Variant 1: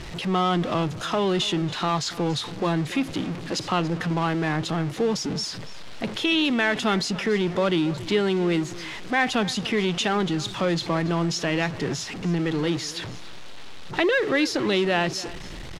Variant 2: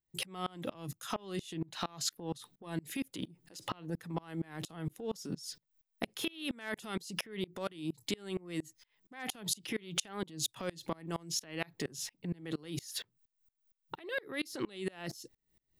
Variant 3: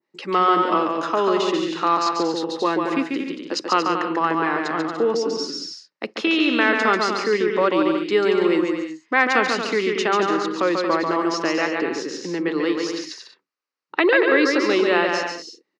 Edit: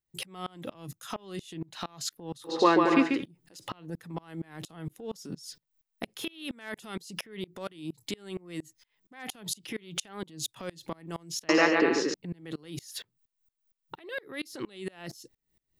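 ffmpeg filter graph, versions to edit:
-filter_complex "[2:a]asplit=2[s0][s1];[1:a]asplit=3[s2][s3][s4];[s2]atrim=end=2.6[s5];[s0]atrim=start=2.44:end=3.26[s6];[s3]atrim=start=3.1:end=11.492[s7];[s1]atrim=start=11.488:end=12.142[s8];[s4]atrim=start=12.138[s9];[s5][s6]acrossfade=d=0.16:c1=tri:c2=tri[s10];[s10][s7]acrossfade=d=0.16:c1=tri:c2=tri[s11];[s11][s8]acrossfade=d=0.004:c1=hsin:c2=hsin[s12];[s12][s9]acrossfade=d=0.004:c1=hsin:c2=hsin"

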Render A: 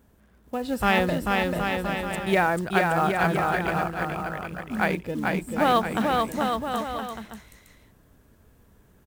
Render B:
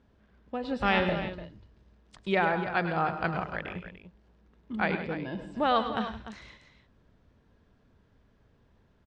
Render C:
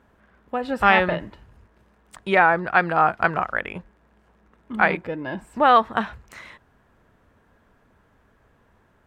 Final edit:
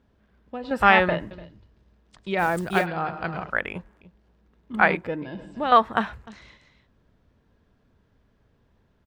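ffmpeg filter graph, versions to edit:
-filter_complex "[2:a]asplit=4[s0][s1][s2][s3];[1:a]asplit=6[s4][s5][s6][s7][s8][s9];[s4]atrim=end=0.712[s10];[s0]atrim=start=0.708:end=1.312[s11];[s5]atrim=start=1.308:end=2.43[s12];[0:a]atrim=start=2.37:end=2.87[s13];[s6]atrim=start=2.81:end=3.502[s14];[s1]atrim=start=3.498:end=4.012[s15];[s7]atrim=start=4.008:end=4.742[s16];[s2]atrim=start=4.738:end=5.222[s17];[s8]atrim=start=5.218:end=5.722[s18];[s3]atrim=start=5.718:end=6.272[s19];[s9]atrim=start=6.268[s20];[s10][s11]acrossfade=d=0.004:c1=hsin:c2=hsin[s21];[s21][s12]acrossfade=d=0.004:c1=hsin:c2=hsin[s22];[s22][s13]acrossfade=d=0.06:c1=tri:c2=tri[s23];[s23][s14]acrossfade=d=0.06:c1=tri:c2=tri[s24];[s24][s15]acrossfade=d=0.004:c1=hsin:c2=hsin[s25];[s25][s16]acrossfade=d=0.004:c1=hsin:c2=hsin[s26];[s26][s17]acrossfade=d=0.004:c1=hsin:c2=hsin[s27];[s27][s18]acrossfade=d=0.004:c1=hsin:c2=hsin[s28];[s28][s19]acrossfade=d=0.004:c1=hsin:c2=hsin[s29];[s29][s20]acrossfade=d=0.004:c1=hsin:c2=hsin"

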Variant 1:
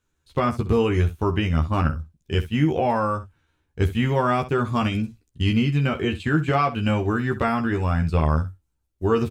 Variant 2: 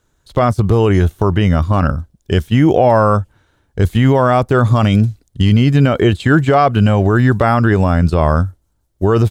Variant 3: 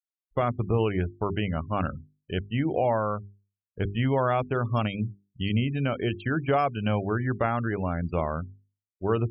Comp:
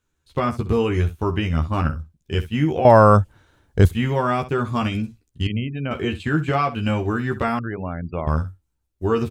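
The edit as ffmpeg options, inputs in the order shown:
-filter_complex "[2:a]asplit=2[s0][s1];[0:a]asplit=4[s2][s3][s4][s5];[s2]atrim=end=2.852[s6];[1:a]atrim=start=2.848:end=3.912[s7];[s3]atrim=start=3.908:end=5.472[s8];[s0]atrim=start=5.468:end=5.912[s9];[s4]atrim=start=5.908:end=7.592[s10];[s1]atrim=start=7.588:end=8.272[s11];[s5]atrim=start=8.268[s12];[s6][s7]acrossfade=d=0.004:c1=hsin:c2=hsin[s13];[s13][s8]acrossfade=d=0.004:c1=hsin:c2=hsin[s14];[s14][s9]acrossfade=d=0.004:c1=hsin:c2=hsin[s15];[s15][s10]acrossfade=d=0.004:c1=hsin:c2=hsin[s16];[s16][s11]acrossfade=d=0.004:c1=hsin:c2=hsin[s17];[s17][s12]acrossfade=d=0.004:c1=hsin:c2=hsin"

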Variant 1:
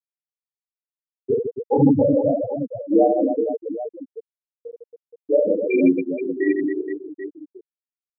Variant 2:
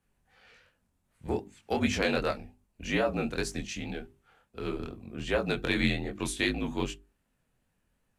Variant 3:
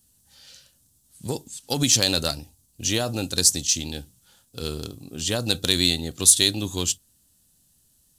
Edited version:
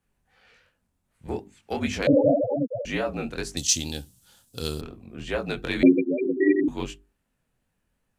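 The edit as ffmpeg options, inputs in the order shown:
-filter_complex "[0:a]asplit=2[s0][s1];[1:a]asplit=4[s2][s3][s4][s5];[s2]atrim=end=2.072[s6];[s0]atrim=start=2.068:end=2.852[s7];[s3]atrim=start=2.848:end=3.572[s8];[2:a]atrim=start=3.568:end=4.812[s9];[s4]atrim=start=4.808:end=5.832[s10];[s1]atrim=start=5.828:end=6.682[s11];[s5]atrim=start=6.678[s12];[s6][s7]acrossfade=d=0.004:c1=hsin:c2=hsin[s13];[s13][s8]acrossfade=d=0.004:c1=hsin:c2=hsin[s14];[s14][s9]acrossfade=d=0.004:c1=hsin:c2=hsin[s15];[s15][s10]acrossfade=d=0.004:c1=hsin:c2=hsin[s16];[s16][s11]acrossfade=d=0.004:c1=hsin:c2=hsin[s17];[s17][s12]acrossfade=d=0.004:c1=hsin:c2=hsin"

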